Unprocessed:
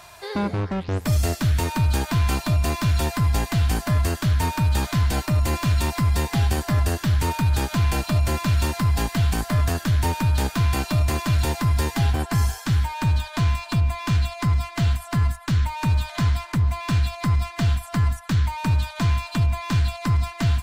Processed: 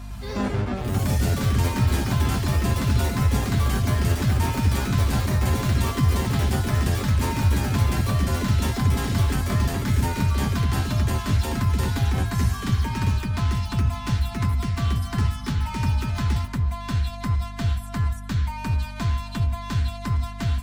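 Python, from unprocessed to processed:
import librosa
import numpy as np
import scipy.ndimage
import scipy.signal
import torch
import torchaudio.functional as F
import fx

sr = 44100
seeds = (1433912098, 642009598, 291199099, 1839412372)

y = fx.add_hum(x, sr, base_hz=50, snr_db=11)
y = fx.echo_pitch(y, sr, ms=106, semitones=4, count=3, db_per_echo=-3.0)
y = fx.notch_comb(y, sr, f0_hz=160.0)
y = F.gain(torch.from_numpy(y), -3.0).numpy()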